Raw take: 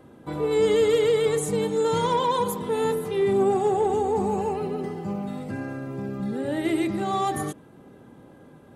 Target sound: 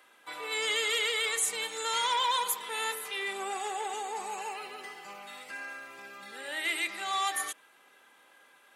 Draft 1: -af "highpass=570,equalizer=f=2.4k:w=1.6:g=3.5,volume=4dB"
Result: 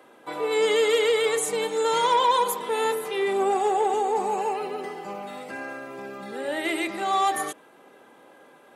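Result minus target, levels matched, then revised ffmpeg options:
500 Hz band +10.0 dB
-af "highpass=1.6k,equalizer=f=2.4k:w=1.6:g=3.5,volume=4dB"

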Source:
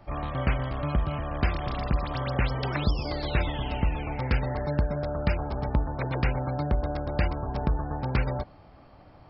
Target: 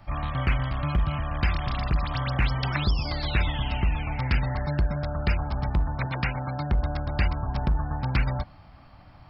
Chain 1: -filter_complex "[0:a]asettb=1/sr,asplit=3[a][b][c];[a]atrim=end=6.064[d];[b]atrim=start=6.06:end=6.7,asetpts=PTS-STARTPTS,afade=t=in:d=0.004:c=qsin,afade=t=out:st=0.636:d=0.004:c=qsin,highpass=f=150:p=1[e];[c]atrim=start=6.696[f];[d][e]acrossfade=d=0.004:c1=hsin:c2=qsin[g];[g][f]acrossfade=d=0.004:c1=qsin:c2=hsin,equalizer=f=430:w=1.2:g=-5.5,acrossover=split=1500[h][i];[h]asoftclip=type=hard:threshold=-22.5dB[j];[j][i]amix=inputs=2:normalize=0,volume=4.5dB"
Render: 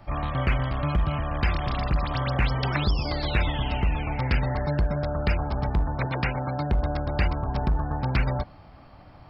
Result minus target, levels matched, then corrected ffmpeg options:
500 Hz band +4.0 dB
-filter_complex "[0:a]asettb=1/sr,asplit=3[a][b][c];[a]atrim=end=6.064[d];[b]atrim=start=6.06:end=6.7,asetpts=PTS-STARTPTS,afade=t=in:d=0.004:c=qsin,afade=t=out:st=0.636:d=0.004:c=qsin,highpass=f=150:p=1[e];[c]atrim=start=6.696[f];[d][e]acrossfade=d=0.004:c1=hsin:c2=qsin[g];[g][f]acrossfade=d=0.004:c1=qsin:c2=hsin,equalizer=f=430:w=1.2:g=-14,acrossover=split=1500[h][i];[h]asoftclip=type=hard:threshold=-22.5dB[j];[j][i]amix=inputs=2:normalize=0,volume=4.5dB"

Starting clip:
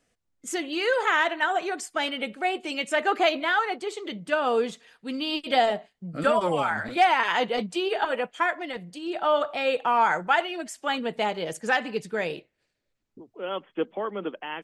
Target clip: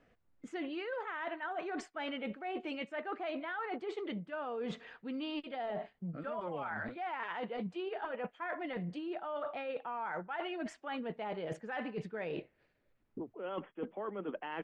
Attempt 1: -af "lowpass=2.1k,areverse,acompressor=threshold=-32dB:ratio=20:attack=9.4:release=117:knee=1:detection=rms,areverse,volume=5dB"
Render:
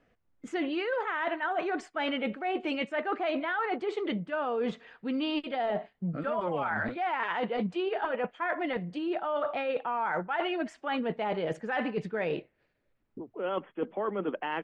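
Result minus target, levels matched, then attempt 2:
compressor: peak gain reduction -8.5 dB
-af "lowpass=2.1k,areverse,acompressor=threshold=-41dB:ratio=20:attack=9.4:release=117:knee=1:detection=rms,areverse,volume=5dB"

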